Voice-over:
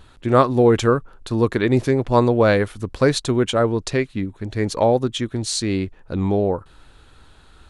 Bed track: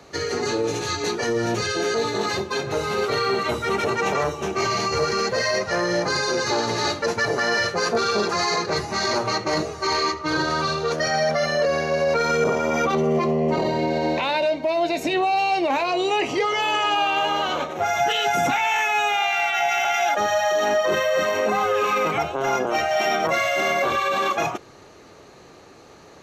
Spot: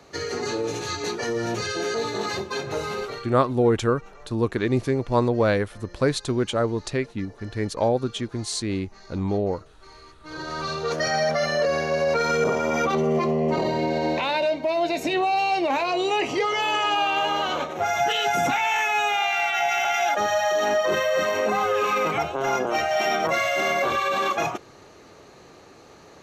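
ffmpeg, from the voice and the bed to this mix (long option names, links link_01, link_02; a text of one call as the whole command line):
ffmpeg -i stem1.wav -i stem2.wav -filter_complex "[0:a]adelay=3000,volume=-5dB[link_01];[1:a]volume=21.5dB,afade=type=out:start_time=2.85:duration=0.46:silence=0.0707946,afade=type=in:start_time=10.18:duration=0.81:silence=0.0562341[link_02];[link_01][link_02]amix=inputs=2:normalize=0" out.wav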